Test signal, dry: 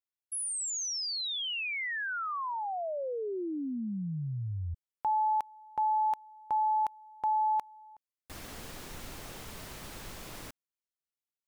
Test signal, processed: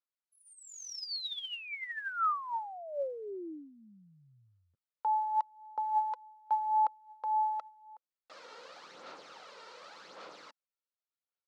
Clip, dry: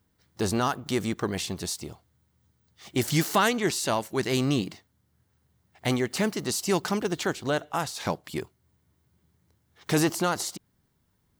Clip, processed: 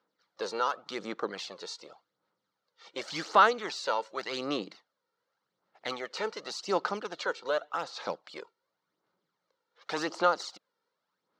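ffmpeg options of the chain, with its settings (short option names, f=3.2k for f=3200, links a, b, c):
-af "highpass=f=250:w=0.5412,highpass=f=250:w=1.3066,equalizer=f=250:t=q:w=4:g=-8,equalizer=f=360:t=q:w=4:g=-4,equalizer=f=520:t=q:w=4:g=8,equalizer=f=900:t=q:w=4:g=4,equalizer=f=1.3k:t=q:w=4:g=10,equalizer=f=4.2k:t=q:w=4:g=5,lowpass=f=5.8k:w=0.5412,lowpass=f=5.8k:w=1.3066,aphaser=in_gain=1:out_gain=1:delay=2.2:decay=0.51:speed=0.88:type=sinusoidal,volume=-8.5dB"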